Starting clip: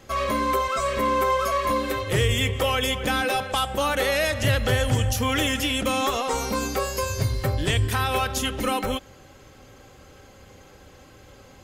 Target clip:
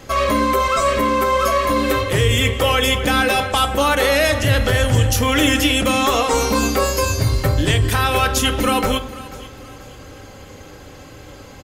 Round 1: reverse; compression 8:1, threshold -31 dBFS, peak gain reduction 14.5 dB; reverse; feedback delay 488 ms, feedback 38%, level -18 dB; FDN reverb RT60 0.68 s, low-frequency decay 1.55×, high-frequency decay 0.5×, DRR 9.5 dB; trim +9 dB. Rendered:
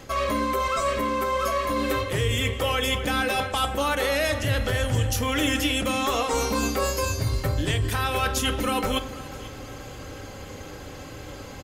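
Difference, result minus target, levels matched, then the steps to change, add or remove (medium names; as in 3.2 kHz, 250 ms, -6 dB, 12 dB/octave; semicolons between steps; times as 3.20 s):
compression: peak gain reduction +8.5 dB
change: compression 8:1, threshold -21.5 dBFS, peak gain reduction 6 dB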